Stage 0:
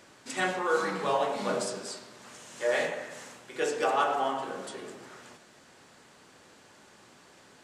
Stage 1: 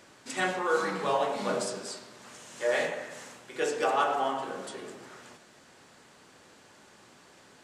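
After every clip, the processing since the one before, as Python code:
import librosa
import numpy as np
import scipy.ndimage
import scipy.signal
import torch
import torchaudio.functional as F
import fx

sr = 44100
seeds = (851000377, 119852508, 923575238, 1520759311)

y = x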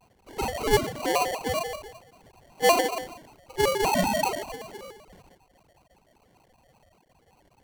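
y = fx.sine_speech(x, sr)
y = fx.sample_hold(y, sr, seeds[0], rate_hz=1500.0, jitter_pct=0)
y = fx.vibrato_shape(y, sr, shape='square', rate_hz=5.2, depth_cents=250.0)
y = y * librosa.db_to_amplitude(3.5)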